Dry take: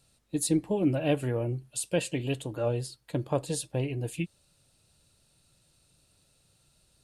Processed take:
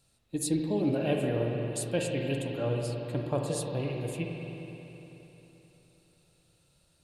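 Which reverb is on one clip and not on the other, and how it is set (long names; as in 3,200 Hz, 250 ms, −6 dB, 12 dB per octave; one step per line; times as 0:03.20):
spring reverb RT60 3.6 s, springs 43/58 ms, chirp 25 ms, DRR 0.5 dB
level −3 dB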